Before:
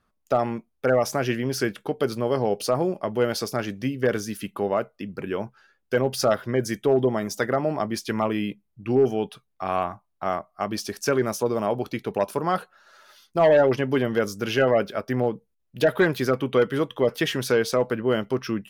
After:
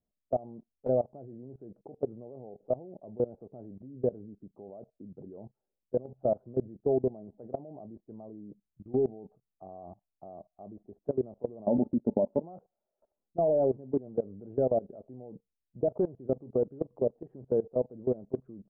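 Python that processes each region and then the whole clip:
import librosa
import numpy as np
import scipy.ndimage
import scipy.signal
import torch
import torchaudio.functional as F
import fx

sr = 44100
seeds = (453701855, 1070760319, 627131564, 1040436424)

y = fx.chain(x, sr, fx.peak_eq(hz=240.0, db=5.0, octaves=1.6),
    fx.small_body(hz=(240.0, 570.0, 870.0, 3400.0), ring_ms=95, db=13), at=(11.67, 12.42))
y = scipy.signal.sosfilt(scipy.signal.cheby1(4, 1.0, 720.0, 'lowpass', fs=sr, output='sos'), y)
y = fx.level_steps(y, sr, step_db=21)
y = y * librosa.db_to_amplitude(-3.5)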